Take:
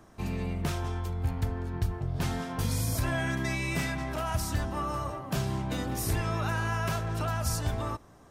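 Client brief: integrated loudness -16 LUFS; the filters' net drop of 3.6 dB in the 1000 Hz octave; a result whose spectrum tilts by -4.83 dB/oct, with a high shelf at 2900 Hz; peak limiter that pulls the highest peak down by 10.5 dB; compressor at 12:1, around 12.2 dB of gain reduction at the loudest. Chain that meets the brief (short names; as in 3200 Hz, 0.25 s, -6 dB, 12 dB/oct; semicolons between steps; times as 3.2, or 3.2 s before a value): bell 1000 Hz -5.5 dB; high shelf 2900 Hz +5 dB; compressor 12:1, threshold -36 dBFS; gain +28 dB; limiter -7 dBFS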